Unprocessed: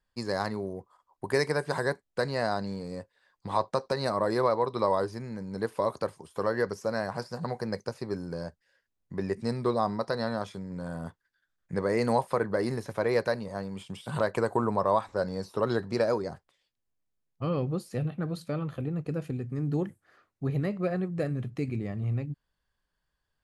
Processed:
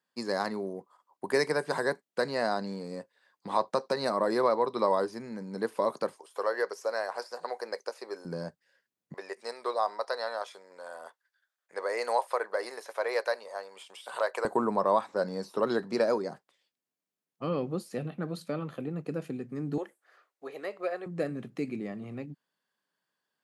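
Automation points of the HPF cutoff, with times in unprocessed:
HPF 24 dB/oct
180 Hz
from 6.16 s 430 Hz
from 8.25 s 140 Hz
from 9.14 s 510 Hz
from 14.45 s 180 Hz
from 19.78 s 430 Hz
from 21.06 s 190 Hz

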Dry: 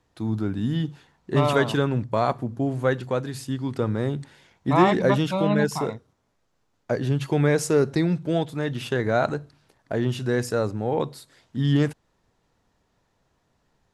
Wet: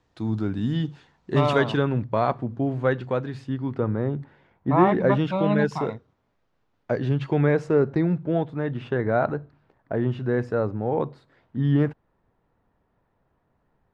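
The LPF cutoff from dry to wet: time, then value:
1.39 s 6100 Hz
1.86 s 3100 Hz
3.14 s 3100 Hz
4.02 s 1500 Hz
4.77 s 1500 Hz
5.53 s 3400 Hz
7.04 s 3400 Hz
7.74 s 1700 Hz

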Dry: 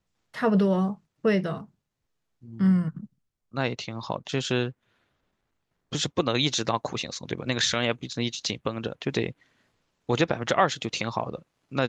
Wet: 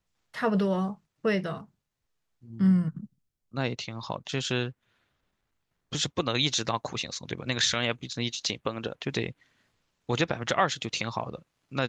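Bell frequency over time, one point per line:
bell -4.5 dB 3 oct
240 Hz
from 2.5 s 1100 Hz
from 3.79 s 390 Hz
from 8.3 s 130 Hz
from 9.03 s 420 Hz

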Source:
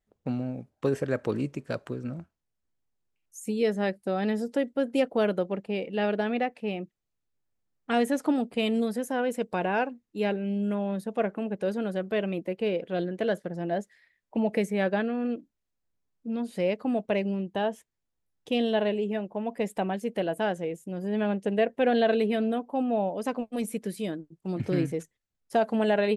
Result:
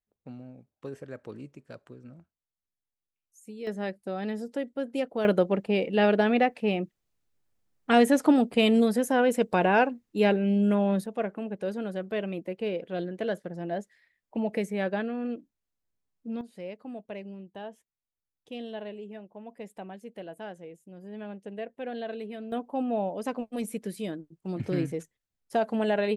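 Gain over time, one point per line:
-13 dB
from 3.67 s -5 dB
from 5.25 s +5 dB
from 11.06 s -3 dB
from 16.41 s -12.5 dB
from 22.52 s -2 dB

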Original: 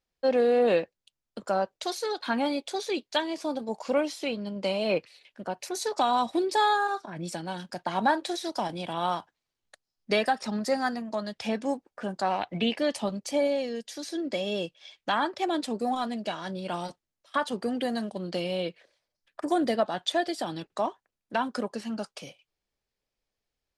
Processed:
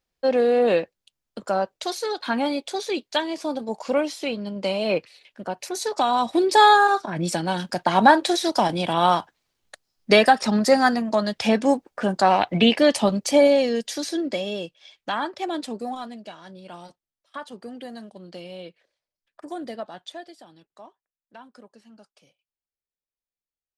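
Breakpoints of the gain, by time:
6.18 s +3.5 dB
6.63 s +10 dB
13.93 s +10 dB
14.6 s 0 dB
15.69 s 0 dB
16.34 s -8 dB
19.96 s -8 dB
20.5 s -17 dB

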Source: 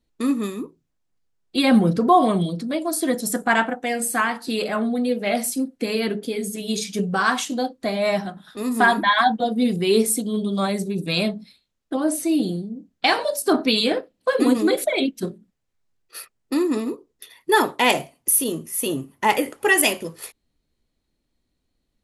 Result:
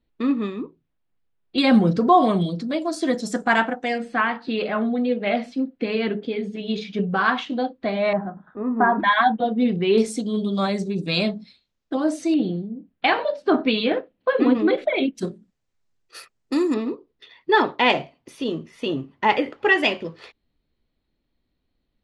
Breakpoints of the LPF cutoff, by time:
LPF 24 dB/oct
3700 Hz
from 1.58 s 6600 Hz
from 3.98 s 3500 Hz
from 8.13 s 1400 Hz
from 9 s 3200 Hz
from 9.98 s 6500 Hz
from 12.34 s 3200 Hz
from 15.15 s 8200 Hz
from 16.74 s 4200 Hz

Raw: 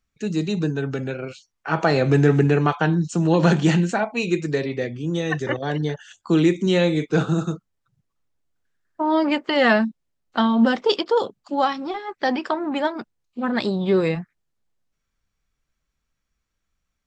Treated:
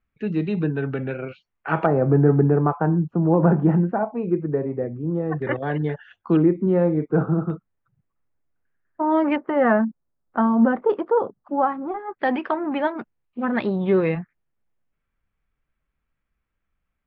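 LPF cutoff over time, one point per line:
LPF 24 dB/oct
2700 Hz
from 1.86 s 1200 Hz
from 5.42 s 2400 Hz
from 6.37 s 1300 Hz
from 7.5 s 2300 Hz
from 9.36 s 1500 Hz
from 12.19 s 2700 Hz

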